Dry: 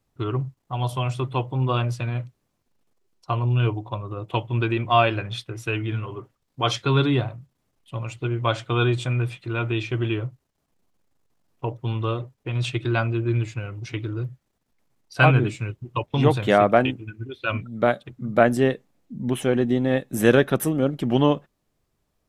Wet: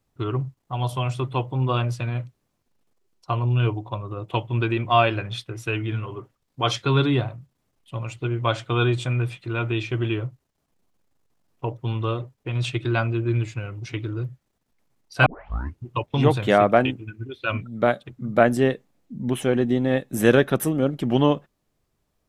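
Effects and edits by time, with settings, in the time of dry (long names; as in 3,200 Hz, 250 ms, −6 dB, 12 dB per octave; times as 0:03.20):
0:15.26: tape start 0.59 s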